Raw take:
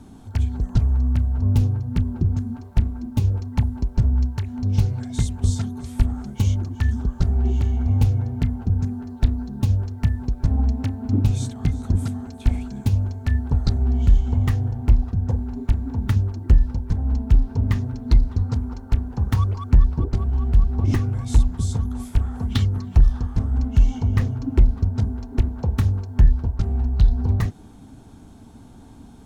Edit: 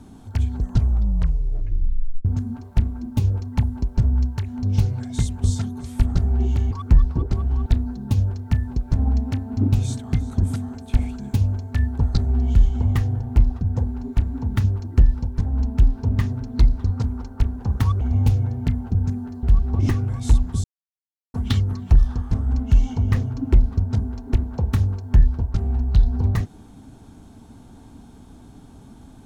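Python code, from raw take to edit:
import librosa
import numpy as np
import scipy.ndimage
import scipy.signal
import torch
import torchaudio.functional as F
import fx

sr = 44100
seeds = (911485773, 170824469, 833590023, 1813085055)

y = fx.edit(x, sr, fx.tape_stop(start_s=0.79, length_s=1.46),
    fx.cut(start_s=6.15, length_s=1.05),
    fx.swap(start_s=7.76, length_s=1.42, other_s=19.53, other_length_s=0.95),
    fx.silence(start_s=21.69, length_s=0.7), tone=tone)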